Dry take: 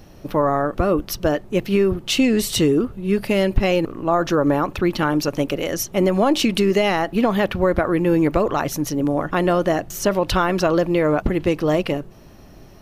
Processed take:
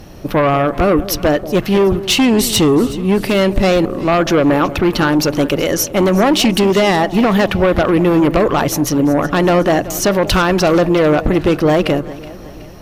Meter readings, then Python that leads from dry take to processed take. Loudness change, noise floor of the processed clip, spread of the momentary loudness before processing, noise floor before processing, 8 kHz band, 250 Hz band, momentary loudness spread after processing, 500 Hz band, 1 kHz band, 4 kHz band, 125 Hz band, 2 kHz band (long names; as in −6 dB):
+6.0 dB, −32 dBFS, 5 LU, −44 dBFS, +8.0 dB, +6.0 dB, 4 LU, +5.5 dB, +6.0 dB, +7.5 dB, +6.5 dB, +6.5 dB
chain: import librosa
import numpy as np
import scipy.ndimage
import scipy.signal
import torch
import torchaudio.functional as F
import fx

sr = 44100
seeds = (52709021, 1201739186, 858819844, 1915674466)

y = fx.cheby_harmonics(x, sr, harmonics=(5,), levels_db=(-9,), full_scale_db=-5.0)
y = fx.echo_alternate(y, sr, ms=186, hz=830.0, feedback_pct=66, wet_db=-14.0)